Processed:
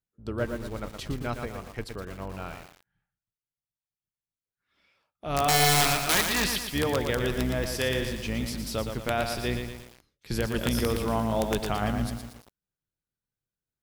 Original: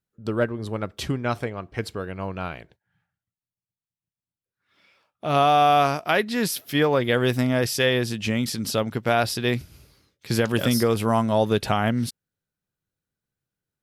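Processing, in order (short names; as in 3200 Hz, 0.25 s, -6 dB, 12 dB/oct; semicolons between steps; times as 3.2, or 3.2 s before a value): octaver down 2 oct, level -3 dB; 5.48–6.64 bell 2600 Hz +14 dB 1.8 oct; wrapped overs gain 8.5 dB; lo-fi delay 0.116 s, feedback 55%, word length 6-bit, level -5.5 dB; gain -7.5 dB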